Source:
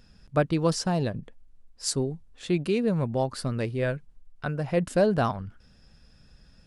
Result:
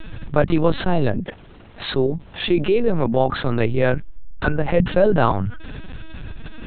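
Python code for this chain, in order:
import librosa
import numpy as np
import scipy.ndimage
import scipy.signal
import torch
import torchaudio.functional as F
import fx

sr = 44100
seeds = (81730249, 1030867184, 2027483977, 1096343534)

y = fx.highpass(x, sr, hz=170.0, slope=12, at=(1.14, 3.6))
y = fx.lpc_vocoder(y, sr, seeds[0], excitation='pitch_kept', order=10)
y = fx.env_flatten(y, sr, amount_pct=50)
y = F.gain(torch.from_numpy(y), 5.5).numpy()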